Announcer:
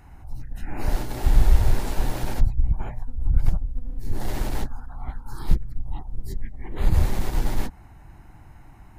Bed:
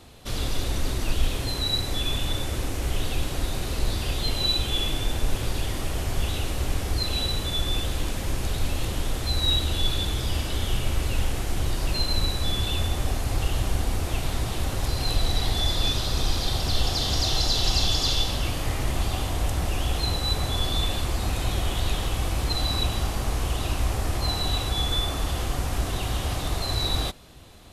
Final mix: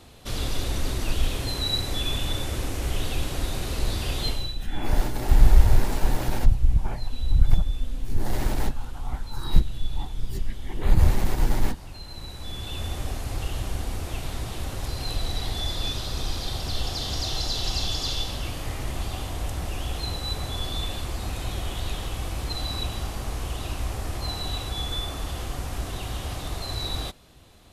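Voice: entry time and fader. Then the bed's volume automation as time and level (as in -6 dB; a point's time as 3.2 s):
4.05 s, +1.5 dB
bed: 4.28 s -0.5 dB
4.56 s -16.5 dB
12.01 s -16.5 dB
12.92 s -4.5 dB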